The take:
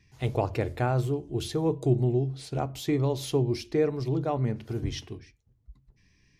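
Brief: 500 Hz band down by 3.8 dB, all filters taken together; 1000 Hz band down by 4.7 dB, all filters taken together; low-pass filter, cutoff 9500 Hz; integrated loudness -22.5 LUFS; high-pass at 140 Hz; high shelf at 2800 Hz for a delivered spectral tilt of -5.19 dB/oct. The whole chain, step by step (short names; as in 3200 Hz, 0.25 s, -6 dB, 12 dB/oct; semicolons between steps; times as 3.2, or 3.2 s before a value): HPF 140 Hz; LPF 9500 Hz; bell 500 Hz -4 dB; bell 1000 Hz -6 dB; high shelf 2800 Hz +9 dB; gain +8.5 dB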